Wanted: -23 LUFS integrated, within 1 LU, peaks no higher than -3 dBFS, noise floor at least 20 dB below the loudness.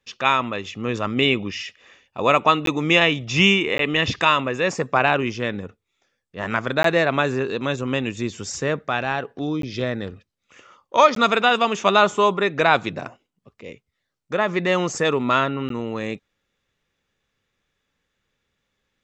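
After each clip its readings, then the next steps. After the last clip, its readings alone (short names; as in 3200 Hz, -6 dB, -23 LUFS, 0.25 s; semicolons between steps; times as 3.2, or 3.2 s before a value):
dropouts 6; longest dropout 13 ms; loudness -20.5 LUFS; peak -2.5 dBFS; loudness target -23.0 LUFS
-> interpolate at 2.66/3.78/6.83/9.62/11.15/15.69, 13 ms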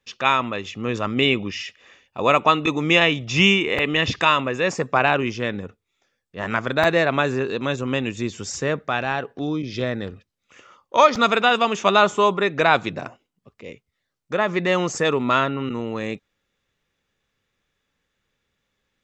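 dropouts 0; loudness -20.5 LUFS; peak -2.5 dBFS; loudness target -23.0 LUFS
-> gain -2.5 dB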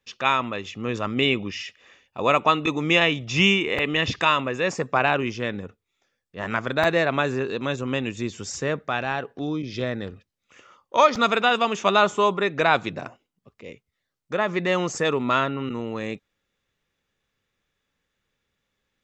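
loudness -23.0 LUFS; peak -5.0 dBFS; noise floor -80 dBFS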